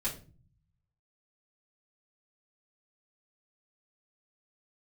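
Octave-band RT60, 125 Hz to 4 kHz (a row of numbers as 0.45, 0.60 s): 1.3, 0.85, 0.45, 0.30, 0.30, 0.30 s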